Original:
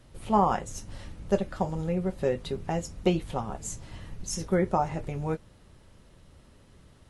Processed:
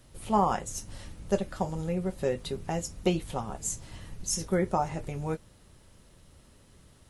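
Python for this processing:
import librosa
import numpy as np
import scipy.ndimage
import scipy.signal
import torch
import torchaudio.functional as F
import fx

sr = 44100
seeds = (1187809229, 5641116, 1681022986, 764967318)

y = fx.high_shelf(x, sr, hz=5800.0, db=10.5)
y = y * librosa.db_to_amplitude(-2.0)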